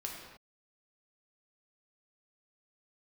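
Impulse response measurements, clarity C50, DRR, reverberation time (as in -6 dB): 2.0 dB, -1.5 dB, no single decay rate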